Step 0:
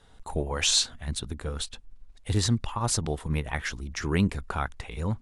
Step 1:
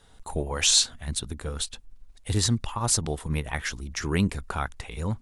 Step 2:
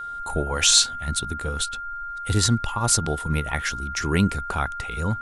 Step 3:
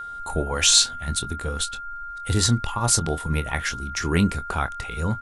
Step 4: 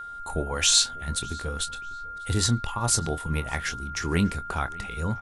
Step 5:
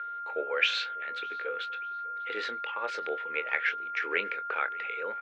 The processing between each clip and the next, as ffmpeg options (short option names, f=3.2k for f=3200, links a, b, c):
-af "highshelf=f=5.9k:g=7.5"
-af "aeval=exprs='val(0)+0.02*sin(2*PI*1400*n/s)':c=same,volume=3.5dB"
-filter_complex "[0:a]asplit=2[a][b];[b]adelay=24,volume=-11.5dB[c];[a][c]amix=inputs=2:normalize=0"
-filter_complex "[0:a]asplit=2[a][b];[b]adelay=595,lowpass=f=4.8k:p=1,volume=-22.5dB,asplit=2[c][d];[d]adelay=595,lowpass=f=4.8k:p=1,volume=0.44,asplit=2[e][f];[f]adelay=595,lowpass=f=4.8k:p=1,volume=0.44[g];[a][c][e][g]amix=inputs=4:normalize=0,volume=-3.5dB"
-af "highpass=f=480:w=0.5412,highpass=f=480:w=1.3066,equalizer=f=480:t=q:w=4:g=7,equalizer=f=730:t=q:w=4:g=-10,equalizer=f=1k:t=q:w=4:g=-8,equalizer=f=1.6k:t=q:w=4:g=4,equalizer=f=2.3k:t=q:w=4:g=8,lowpass=f=2.9k:w=0.5412,lowpass=f=2.9k:w=1.3066"